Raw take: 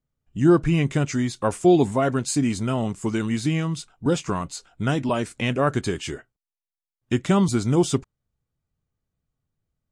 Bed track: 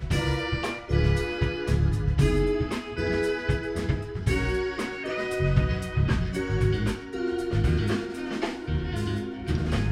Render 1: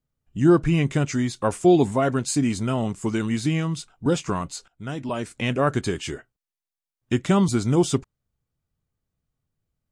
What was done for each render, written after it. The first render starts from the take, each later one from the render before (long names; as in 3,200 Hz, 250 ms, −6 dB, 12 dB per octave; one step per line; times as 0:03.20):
0:04.68–0:05.54: fade in, from −16.5 dB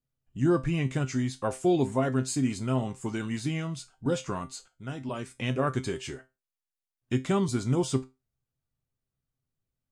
pitch vibrato 4.4 Hz 9.3 cents
tuned comb filter 130 Hz, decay 0.23 s, harmonics all, mix 70%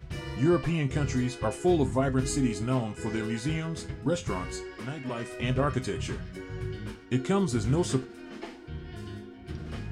mix in bed track −11.5 dB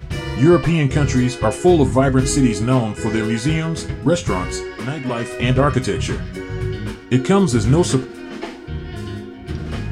level +11.5 dB
brickwall limiter −3 dBFS, peak gain reduction 2.5 dB